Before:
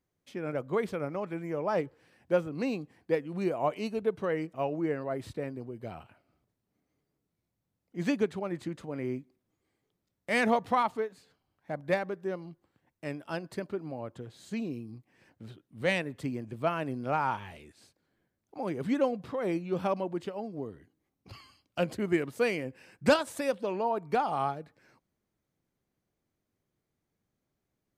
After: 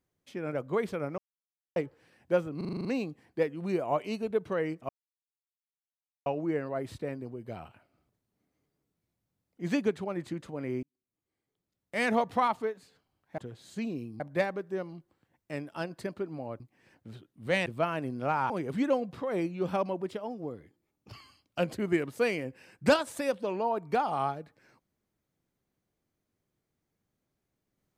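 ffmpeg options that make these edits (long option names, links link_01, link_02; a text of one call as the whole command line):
ffmpeg -i in.wav -filter_complex "[0:a]asplit=19[link_01][link_02][link_03][link_04][link_05][link_06][link_07][link_08][link_09][link_10][link_11][link_12][link_13][link_14][link_15][link_16][link_17][link_18][link_19];[link_01]atrim=end=1.18,asetpts=PTS-STARTPTS,afade=type=out:start_time=1.176:duration=0.004:curve=hsin[link_20];[link_02]atrim=start=1.18:end=1.76,asetpts=PTS-STARTPTS,volume=0[link_21];[link_03]atrim=start=1.76:end=2.612,asetpts=PTS-STARTPTS,afade=type=in:duration=0.004:curve=hsin[link_22];[link_04]atrim=start=2.568:end=2.612[link_23];[link_05]atrim=start=2.568:end=2.612[link_24];[link_06]atrim=start=2.568:end=2.612[link_25];[link_07]atrim=start=2.568:end=2.612[link_26];[link_08]atrim=start=2.568:end=2.612[link_27];[link_09]atrim=start=2.568:end=2.612[link_28];[link_10]atrim=start=2.568:end=4.61,asetpts=PTS-STARTPTS,afade=type=out:start_time=2.038:duration=0.004:curve=hsin,apad=pad_dur=1.37[link_29];[link_11]atrim=start=4.61:end=9.18,asetpts=PTS-STARTPTS,afade=type=in:duration=0.004:curve=hsin,afade=type=out:start_time=4.566:duration=0.004:curve=hsin[link_30];[link_12]atrim=start=9.18:end=11.732,asetpts=PTS-STARTPTS,afade=type=in:duration=1.48[link_31];[link_13]atrim=start=14.128:end=14.952[link_32];[link_14]atrim=start=11.728:end=14.132[link_33];[link_15]atrim=start=14.948:end=16.012[link_34];[link_16]atrim=start=16.498:end=17.342[link_35];[link_17]atrim=start=18.608:end=20.124[link_36];[link_18]atrim=start=20.12:end=21.33,asetpts=PTS-STARTPTS,asetrate=47628,aresample=44100,atrim=end_sample=49408,asetpts=PTS-STARTPTS[link_37];[link_19]atrim=start=21.326[link_38];[link_20][link_21][link_22]concat=n=3:v=0:a=1[link_39];[link_39][link_23]acrossfade=duration=0.004:curve1=hsin:curve2=hsin[link_40];[link_40][link_24]acrossfade=duration=0.004:curve1=hsin:curve2=hsin[link_41];[link_41][link_25]acrossfade=duration=0.004:curve1=hsin:curve2=hsin[link_42];[link_42][link_26]acrossfade=duration=0.004:curve1=hsin:curve2=hsin[link_43];[link_43][link_27]acrossfade=duration=0.004:curve1=hsin:curve2=hsin[link_44];[link_44][link_28]acrossfade=duration=0.004:curve1=hsin:curve2=hsin[link_45];[link_29][link_30][link_31]concat=n=3:v=0:a=1[link_46];[link_45][link_46]acrossfade=duration=0.004:curve1=hsin:curve2=hsin[link_47];[link_47][link_32]acrossfade=duration=0.004:curve1=hsin:curve2=hsin[link_48];[link_48][link_33]acrossfade=duration=0.004:curve1=hsin:curve2=hsin[link_49];[link_49][link_34]acrossfade=duration=0.004:curve1=hsin:curve2=hsin[link_50];[link_50][link_35]acrossfade=duration=0.004:curve1=hsin:curve2=hsin[link_51];[link_51][link_36]acrossfade=duration=0.004:curve1=hsin:curve2=hsin[link_52];[link_52][link_37]acrossfade=duration=0.004:curve1=hsin:curve2=hsin[link_53];[link_53][link_38]acrossfade=duration=0.004:curve1=hsin:curve2=hsin" out.wav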